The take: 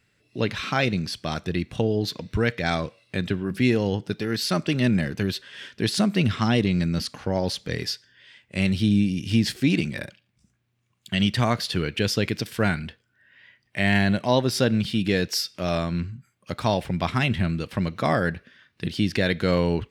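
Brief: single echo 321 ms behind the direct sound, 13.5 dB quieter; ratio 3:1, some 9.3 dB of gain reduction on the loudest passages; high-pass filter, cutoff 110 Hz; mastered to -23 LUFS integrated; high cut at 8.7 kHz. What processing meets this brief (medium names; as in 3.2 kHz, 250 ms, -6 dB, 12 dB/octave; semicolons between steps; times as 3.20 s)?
high-pass 110 Hz; low-pass 8.7 kHz; compression 3:1, threshold -29 dBFS; delay 321 ms -13.5 dB; trim +9 dB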